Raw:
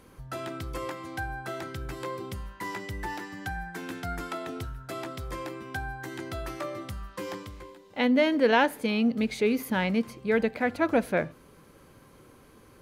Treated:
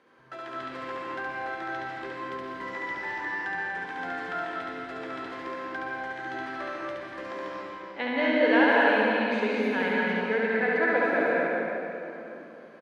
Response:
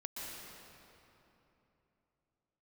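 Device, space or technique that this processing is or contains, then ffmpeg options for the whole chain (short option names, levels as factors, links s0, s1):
station announcement: -filter_complex "[0:a]highpass=330,lowpass=3600,equalizer=f=1700:t=o:w=0.31:g=7,aecho=1:1:69.97|239.1:0.794|0.282[s0];[1:a]atrim=start_sample=2205[s1];[s0][s1]afir=irnorm=-1:irlink=0"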